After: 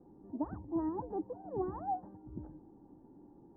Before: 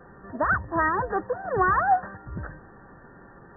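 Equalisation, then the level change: cascade formant filter u; +1.0 dB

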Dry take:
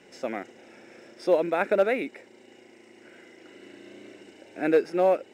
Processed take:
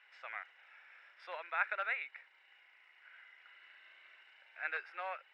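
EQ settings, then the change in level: high-pass 1.2 kHz 24 dB/octave; distance through air 440 m; +1.0 dB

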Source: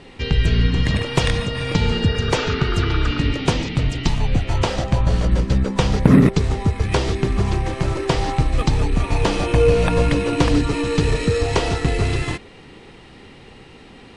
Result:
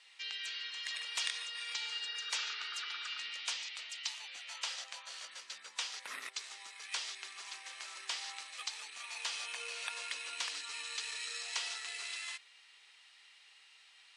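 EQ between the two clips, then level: high-pass 1.1 kHz 12 dB/octave; distance through air 56 m; differentiator; -2.0 dB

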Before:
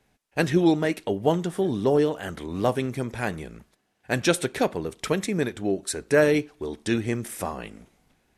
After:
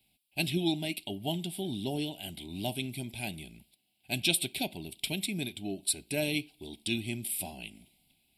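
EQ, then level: Butterworth band-stop 1.2 kHz, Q 0.74; tilt EQ +2.5 dB/octave; static phaser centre 1.8 kHz, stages 6; 0.0 dB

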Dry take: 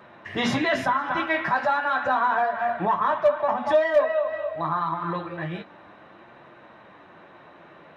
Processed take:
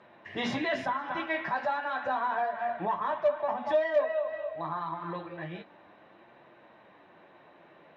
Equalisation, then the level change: distance through air 81 m; bass shelf 180 Hz -7.5 dB; peaking EQ 1.3 kHz -6 dB 0.57 oct; -5.0 dB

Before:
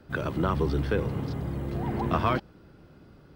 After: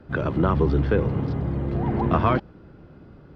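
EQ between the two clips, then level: tape spacing loss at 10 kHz 23 dB; +6.5 dB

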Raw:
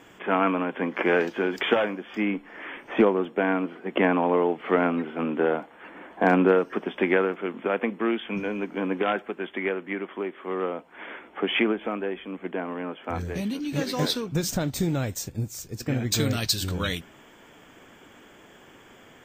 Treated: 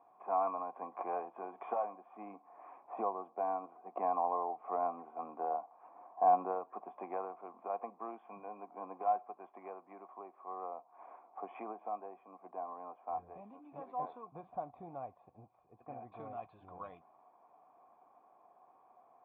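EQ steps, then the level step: cascade formant filter a; high-pass 170 Hz 6 dB/octave; distance through air 90 m; +1.5 dB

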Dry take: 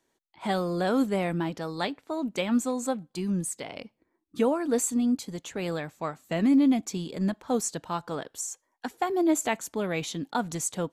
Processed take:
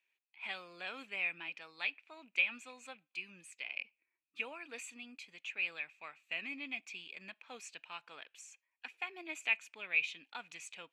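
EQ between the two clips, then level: band-pass filter 2.5 kHz, Q 15; +12.5 dB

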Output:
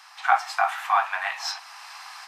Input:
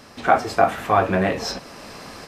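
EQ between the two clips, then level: steep high-pass 770 Hz 72 dB/octave; treble shelf 7.7 kHz -4.5 dB; 0.0 dB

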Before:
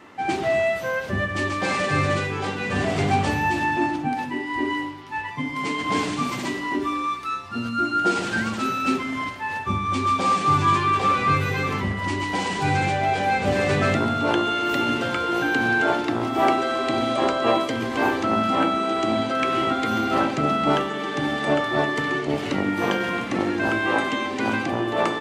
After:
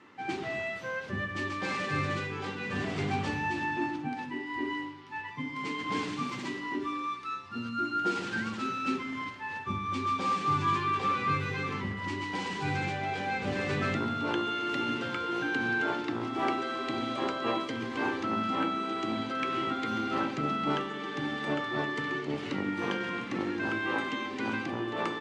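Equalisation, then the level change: high-pass 92 Hz; low-pass 6.1 kHz 12 dB/octave; peaking EQ 660 Hz -8.5 dB 0.48 oct; -8.0 dB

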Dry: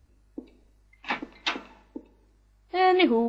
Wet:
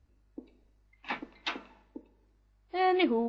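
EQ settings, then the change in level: distance through air 65 m; -5.5 dB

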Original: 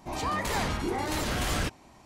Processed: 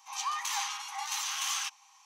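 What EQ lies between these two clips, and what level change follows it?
rippled Chebyshev high-pass 780 Hz, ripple 9 dB; peaking EQ 6.1 kHz +14.5 dB 0.3 oct; treble shelf 8.2 kHz +7 dB; +1.0 dB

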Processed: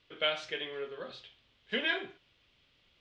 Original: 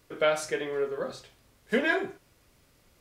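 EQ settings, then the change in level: four-pole ladder low-pass 3.6 kHz, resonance 60%; treble shelf 2.8 kHz +11.5 dB; 0.0 dB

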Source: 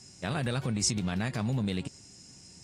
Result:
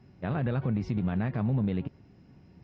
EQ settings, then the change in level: distance through air 270 m; tape spacing loss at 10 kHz 31 dB; +3.5 dB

